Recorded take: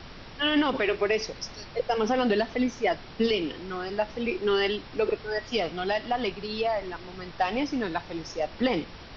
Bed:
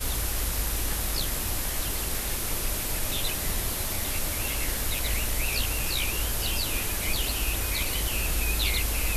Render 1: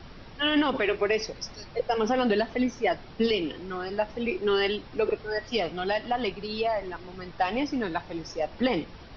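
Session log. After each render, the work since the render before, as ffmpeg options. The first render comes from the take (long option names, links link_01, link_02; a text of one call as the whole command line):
ffmpeg -i in.wav -af "afftdn=noise_reduction=6:noise_floor=-45" out.wav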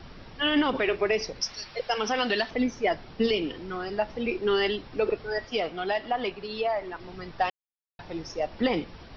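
ffmpeg -i in.wav -filter_complex "[0:a]asettb=1/sr,asplit=3[link_01][link_02][link_03];[link_01]atrim=end=1.414[link_04];[link_02]atrim=start=1.41:end=2.51,asetpts=PTS-STARTPTS,afade=type=in:duration=0.004:curve=qsin,afade=type=out:start_time=1.096:duration=0.004:curve=qsin,tiltshelf=frequency=930:gain=-7.5[link_05];[link_03]atrim=start=2.506[link_06];[link_04][link_05]acrossfade=duration=0.004:curve1=hsin:curve2=qsin[link_07];[link_07][link_06]acrossfade=duration=0.004:curve1=qsin:curve2=hsin,asettb=1/sr,asplit=3[link_08][link_09][link_10];[link_08]atrim=end=5.454[link_11];[link_09]atrim=start=5.45:end=7,asetpts=PTS-STARTPTS,afade=type=in:duration=0.004:curve=qsin,afade=type=out:start_time=1.546:duration=0.004:curve=qsin,bass=frequency=250:gain=-7,treble=frequency=4000:gain=-5[link_12];[link_10]atrim=start=6.996[link_13];[link_11][link_12]acrossfade=duration=0.004:curve1=hsin:curve2=qsin[link_14];[link_14][link_13]acrossfade=duration=0.004:curve1=qsin:curve2=hsin,asplit=3[link_15][link_16][link_17];[link_15]atrim=end=7.5,asetpts=PTS-STARTPTS,afade=type=out:start_time=7.496:duration=0.004:curve=hsin[link_18];[link_16]atrim=start=7.5:end=7.99,asetpts=PTS-STARTPTS,volume=0[link_19];[link_17]atrim=start=7.99,asetpts=PTS-STARTPTS,afade=type=in:duration=0.004:curve=hsin[link_20];[link_18][link_19][link_20]concat=n=3:v=0:a=1" out.wav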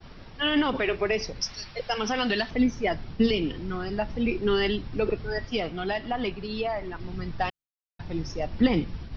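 ffmpeg -i in.wav -af "agate=range=-33dB:threshold=-43dB:ratio=3:detection=peak,asubboost=boost=4:cutoff=250" out.wav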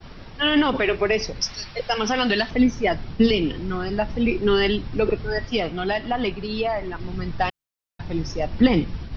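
ffmpeg -i in.wav -af "volume=5dB" out.wav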